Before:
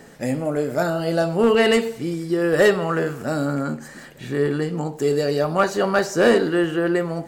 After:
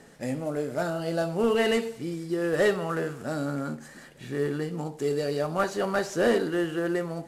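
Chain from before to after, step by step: CVSD 64 kbps; gain -7 dB

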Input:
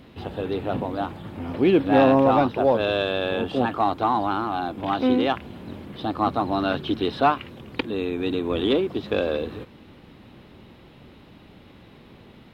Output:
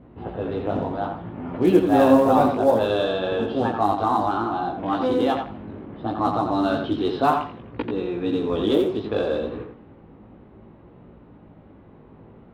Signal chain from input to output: chorus 0.63 Hz, delay 16.5 ms, depth 2.8 ms; short-mantissa float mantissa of 4-bit; dynamic EQ 2400 Hz, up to -8 dB, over -48 dBFS, Q 1.5; tape echo 86 ms, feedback 23%, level -5 dB, low-pass 4500 Hz; low-pass opened by the level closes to 970 Hz, open at -18.5 dBFS; gain +3.5 dB

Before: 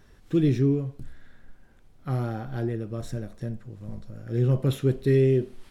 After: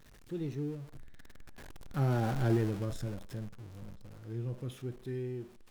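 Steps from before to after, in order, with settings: zero-crossing step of -35 dBFS; Doppler pass-by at 2.38, 19 m/s, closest 6.1 m

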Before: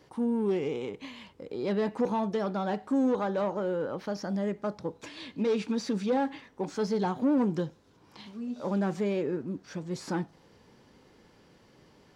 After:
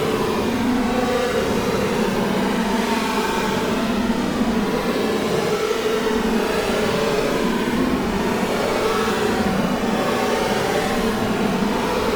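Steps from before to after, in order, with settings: HPF 140 Hz 12 dB/oct; notch 650 Hz, Q 12; on a send: swelling echo 0.128 s, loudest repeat 8, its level -8 dB; on the sum: sample leveller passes 5; hard clip -24.5 dBFS, distortion -12 dB; Paulstretch 14×, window 0.05 s, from 1.95; gain +5 dB; Opus 48 kbps 48000 Hz

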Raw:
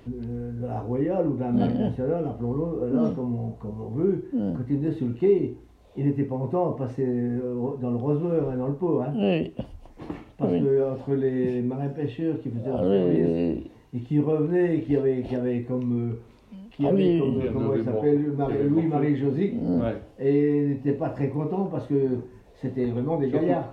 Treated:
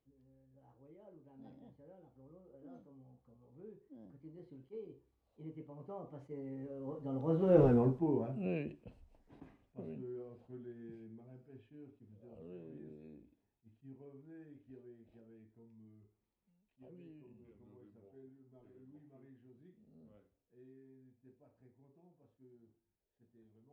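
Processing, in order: Doppler pass-by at 7.67, 34 m/s, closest 4 m; attack slew limiter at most 510 dB/s; gain +1.5 dB

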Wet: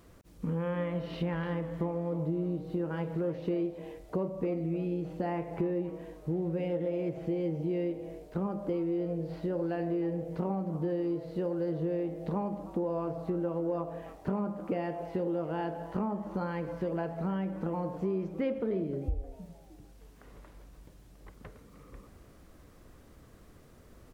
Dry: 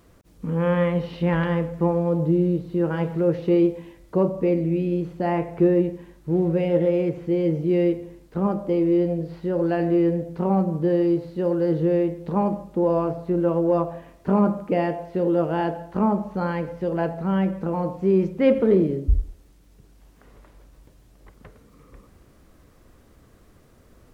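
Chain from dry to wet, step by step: compressor 5:1, threshold -28 dBFS, peak gain reduction 14 dB; frequency-shifting echo 0.307 s, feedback 34%, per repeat +130 Hz, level -16.5 dB; gain -2 dB

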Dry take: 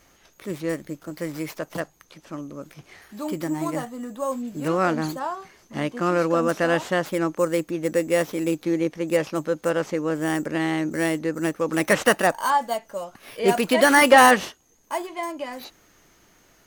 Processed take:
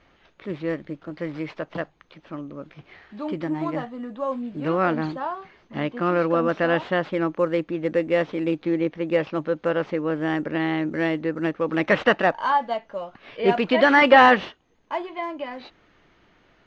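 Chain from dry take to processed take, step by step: LPF 3700 Hz 24 dB/oct

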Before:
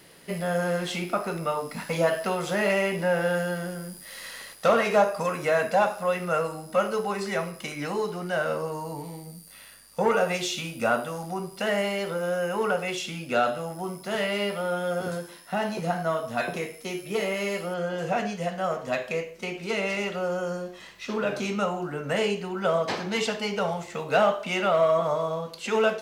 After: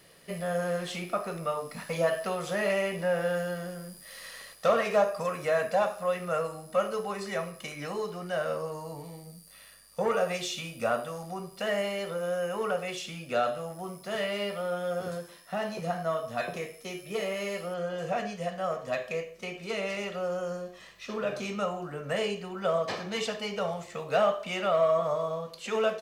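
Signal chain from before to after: comb 1.7 ms, depth 34%; gain -5 dB

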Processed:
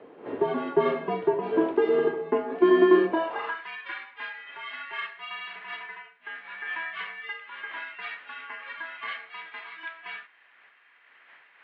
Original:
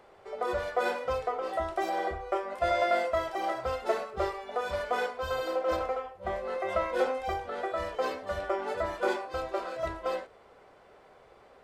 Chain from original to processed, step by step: wind noise 310 Hz -36 dBFS; mistuned SSB -330 Hz 340–3600 Hz; high-pass sweep 380 Hz -> 1900 Hz, 3.06–3.65; gain +3.5 dB

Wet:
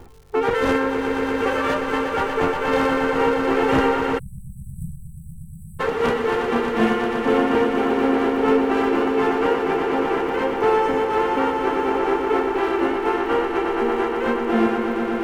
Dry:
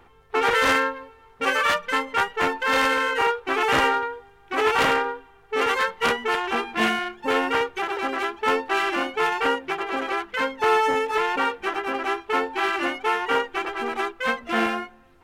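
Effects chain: tilt shelf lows +9 dB, about 750 Hz; swelling echo 0.119 s, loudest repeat 5, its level -9 dB; reverse; upward compressor, threshold -27 dBFS; reverse; crackle 270/s -42 dBFS; spectral delete 4.19–5.8, 210–7700 Hz

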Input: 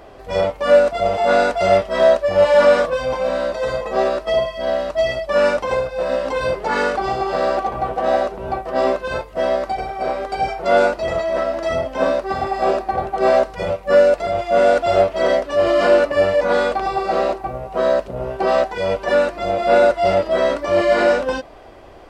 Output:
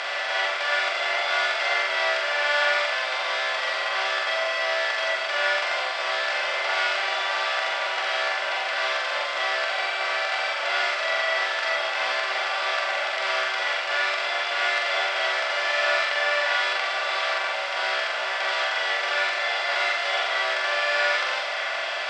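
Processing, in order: per-bin compression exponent 0.2; Chebyshev high-pass 2100 Hz, order 2; air absorption 93 m; on a send: flutter echo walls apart 7.6 m, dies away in 0.66 s; on the sum: gain -4 dB

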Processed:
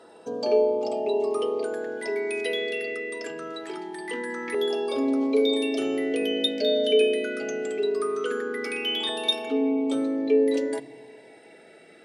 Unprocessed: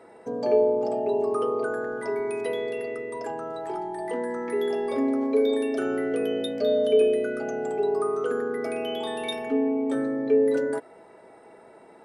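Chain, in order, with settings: weighting filter D; LFO notch saw down 0.22 Hz 590–2200 Hz; on a send: reverb RT60 1.3 s, pre-delay 3 ms, DRR 19.5 dB

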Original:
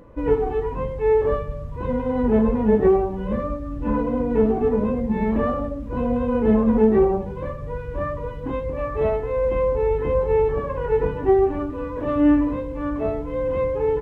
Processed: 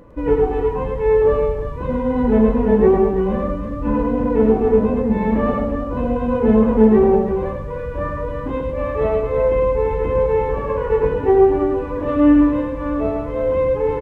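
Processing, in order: tapped delay 0.106/0.333 s -4.5/-7.5 dB; gain +2 dB

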